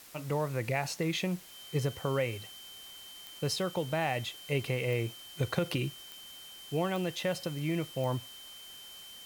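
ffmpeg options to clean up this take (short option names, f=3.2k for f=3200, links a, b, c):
-af "adeclick=t=4,bandreject=f=3.1k:w=30,afwtdn=0.0025"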